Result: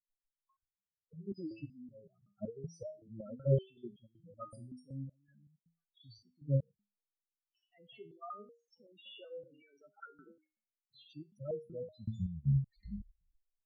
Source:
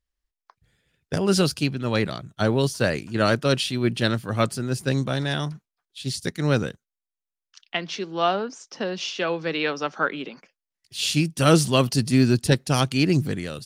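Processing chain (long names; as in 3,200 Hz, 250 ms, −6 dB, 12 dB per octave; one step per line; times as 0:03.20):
turntable brake at the end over 2.01 s
output level in coarse steps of 20 dB
shaped tremolo triangle 0.91 Hz, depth 60%
spectral peaks only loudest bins 4
step-sequenced resonator 5.3 Hz 110–470 Hz
level +5 dB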